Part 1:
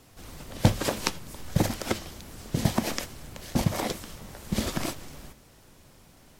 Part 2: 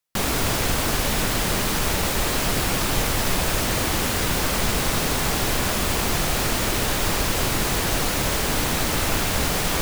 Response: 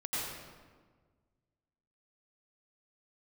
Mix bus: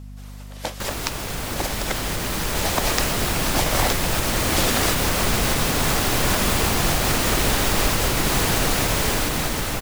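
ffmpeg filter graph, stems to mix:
-filter_complex "[0:a]highpass=540,volume=-0.5dB[link_01];[1:a]alimiter=limit=-14dB:level=0:latency=1:release=184,adelay=650,volume=-8.5dB,asplit=2[link_02][link_03];[link_03]volume=-10.5dB[link_04];[2:a]atrim=start_sample=2205[link_05];[link_04][link_05]afir=irnorm=-1:irlink=0[link_06];[link_01][link_02][link_06]amix=inputs=3:normalize=0,dynaudnorm=framelen=200:gausssize=13:maxgain=11dB,aeval=exprs='val(0)+0.0158*(sin(2*PI*50*n/s)+sin(2*PI*2*50*n/s)/2+sin(2*PI*3*50*n/s)/3+sin(2*PI*4*50*n/s)/4+sin(2*PI*5*50*n/s)/5)':channel_layout=same"

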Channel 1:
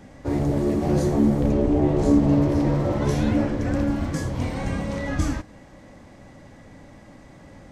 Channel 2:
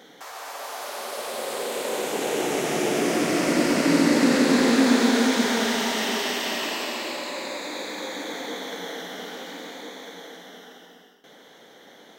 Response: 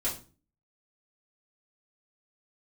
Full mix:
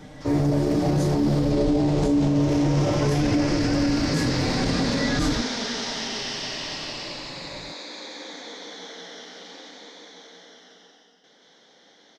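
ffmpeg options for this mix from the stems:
-filter_complex "[0:a]aecho=1:1:6.6:0.69,volume=1dB[link_01];[1:a]lowpass=frequency=5200:width_type=q:width=3.6,volume=-9.5dB,asplit=2[link_02][link_03];[link_03]volume=-3dB,aecho=0:1:178:1[link_04];[link_01][link_02][link_04]amix=inputs=3:normalize=0,alimiter=limit=-14dB:level=0:latency=1:release=21"

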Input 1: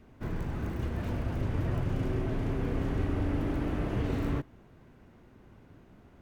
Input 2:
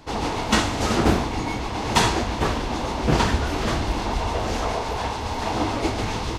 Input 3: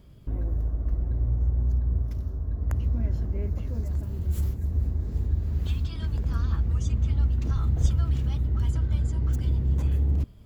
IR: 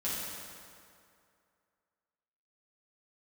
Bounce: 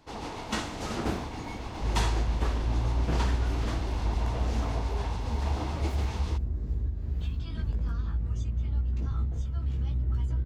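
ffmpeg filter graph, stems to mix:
-filter_complex "[0:a]adelay=400,volume=-10.5dB[link_01];[1:a]volume=-12dB[link_02];[2:a]highshelf=frequency=7600:gain=-10.5,alimiter=limit=-21.5dB:level=0:latency=1:release=403,flanger=delay=16.5:depth=2.4:speed=0.22,adelay=1550,volume=2dB[link_03];[link_01][link_02][link_03]amix=inputs=3:normalize=0"

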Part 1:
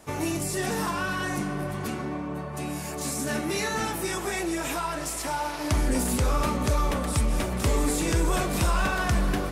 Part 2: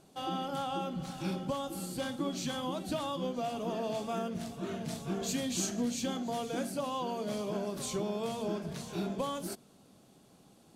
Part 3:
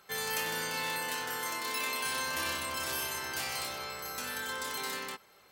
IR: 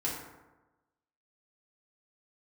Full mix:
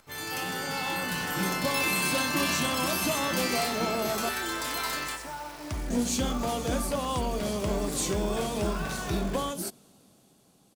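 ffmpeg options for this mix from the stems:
-filter_complex "[0:a]lowpass=10000,acompressor=mode=upward:threshold=-39dB:ratio=2.5,acrusher=bits=7:dc=4:mix=0:aa=0.000001,volume=-16.5dB[link_01];[1:a]highshelf=frequency=5500:gain=7.5,adelay=150,volume=-3dB,asplit=3[link_02][link_03][link_04];[link_02]atrim=end=4.29,asetpts=PTS-STARTPTS,afade=type=out:start_time=4.286:duration=0.004:curve=hsin[link_05];[link_03]atrim=start=4.29:end=5.9,asetpts=PTS-STARTPTS,volume=0[link_06];[link_04]atrim=start=5.9,asetpts=PTS-STARTPTS,afade=type=in:duration=0.004:curve=hsin[link_07];[link_05][link_06][link_07]concat=n=3:v=0:a=1[link_08];[2:a]equalizer=frequency=390:width_type=o:width=0.77:gain=-6.5,volume=-6.5dB,asplit=2[link_09][link_10];[link_10]volume=-5dB[link_11];[3:a]atrim=start_sample=2205[link_12];[link_11][link_12]afir=irnorm=-1:irlink=0[link_13];[link_01][link_08][link_09][link_13]amix=inputs=4:normalize=0,dynaudnorm=framelen=110:gausssize=21:maxgain=7dB"

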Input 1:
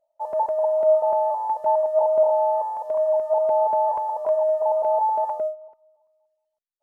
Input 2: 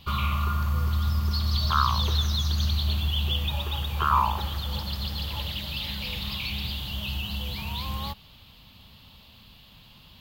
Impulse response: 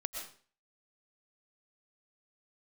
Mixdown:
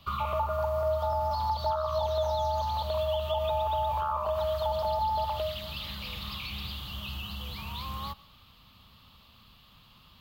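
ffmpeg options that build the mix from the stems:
-filter_complex "[0:a]volume=-1.5dB[link_01];[1:a]alimiter=limit=-20.5dB:level=0:latency=1:release=66,volume=-7dB,asplit=2[link_02][link_03];[link_03]volume=-17dB[link_04];[2:a]atrim=start_sample=2205[link_05];[link_04][link_05]afir=irnorm=-1:irlink=0[link_06];[link_01][link_02][link_06]amix=inputs=3:normalize=0,equalizer=frequency=1200:width_type=o:width=0.35:gain=11.5,acrossover=split=180|850[link_07][link_08][link_09];[link_07]acompressor=threshold=-35dB:ratio=4[link_10];[link_08]acompressor=threshold=-37dB:ratio=4[link_11];[link_09]acompressor=threshold=-31dB:ratio=4[link_12];[link_10][link_11][link_12]amix=inputs=3:normalize=0"

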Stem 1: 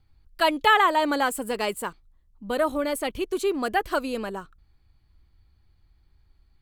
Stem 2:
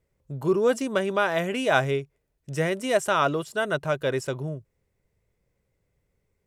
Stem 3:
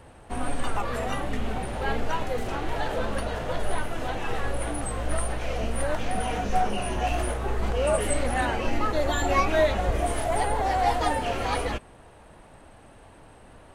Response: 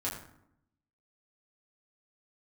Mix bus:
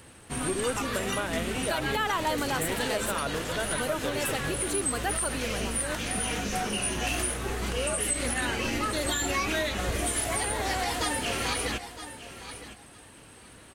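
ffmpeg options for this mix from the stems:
-filter_complex "[0:a]adelay=1300,volume=-6dB[link_01];[1:a]volume=-8dB[link_02];[2:a]highpass=frequency=150:poles=1,equalizer=frequency=720:width=1.1:gain=-10.5,volume=2.5dB,asplit=2[link_03][link_04];[link_04]volume=-14.5dB,aecho=0:1:962|1924|2886:1|0.17|0.0289[link_05];[link_01][link_02][link_03][link_05]amix=inputs=4:normalize=0,highshelf=frequency=4200:gain=9.5,alimiter=limit=-18.5dB:level=0:latency=1:release=111"

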